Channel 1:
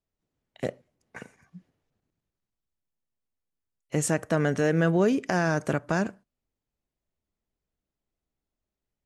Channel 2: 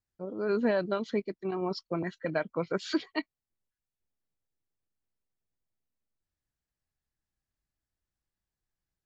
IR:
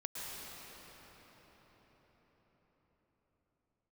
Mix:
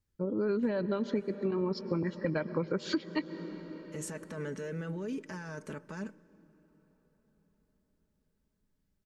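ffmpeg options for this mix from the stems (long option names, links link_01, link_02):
-filter_complex "[0:a]aecho=1:1:4.6:0.53,alimiter=limit=-19dB:level=0:latency=1:release=13,volume=-11.5dB,asplit=2[link_01][link_02];[link_02]volume=-23dB[link_03];[1:a]lowshelf=frequency=390:gain=9.5,volume=1dB,asplit=2[link_04][link_05];[link_05]volume=-15dB[link_06];[2:a]atrim=start_sample=2205[link_07];[link_03][link_06]amix=inputs=2:normalize=0[link_08];[link_08][link_07]afir=irnorm=-1:irlink=0[link_09];[link_01][link_04][link_09]amix=inputs=3:normalize=0,asuperstop=centerf=700:order=4:qfactor=4.5,acompressor=threshold=-28dB:ratio=6"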